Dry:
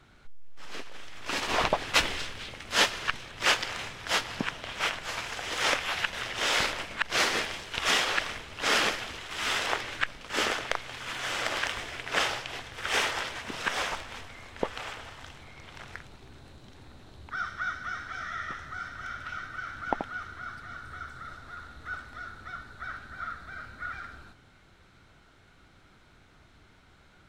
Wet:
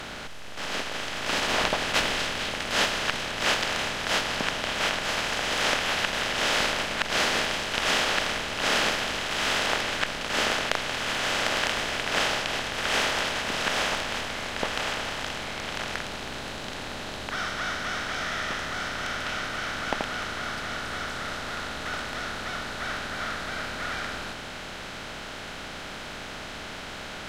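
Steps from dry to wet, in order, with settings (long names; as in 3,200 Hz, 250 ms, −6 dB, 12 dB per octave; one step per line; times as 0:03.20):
compressor on every frequency bin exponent 0.4
level −4.5 dB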